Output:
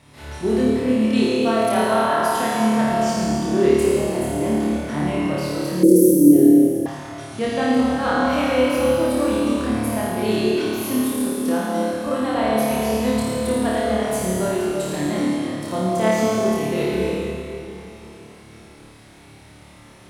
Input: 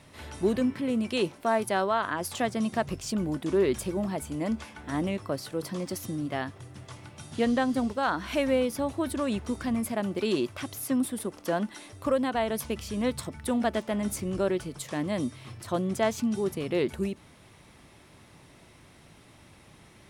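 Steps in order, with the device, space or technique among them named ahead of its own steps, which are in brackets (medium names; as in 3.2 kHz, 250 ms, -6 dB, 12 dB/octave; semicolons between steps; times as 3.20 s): tunnel (flutter echo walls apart 4.7 m, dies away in 1 s; reverberation RT60 3.1 s, pre-delay 61 ms, DRR -1 dB); 5.83–6.86 s: FFT filter 140 Hz 0 dB, 300 Hz +14 dB, 490 Hz +13 dB, 900 Hz -29 dB, 1.5 kHz -19 dB, 4.6 kHz -10 dB, 9.3 kHz +11 dB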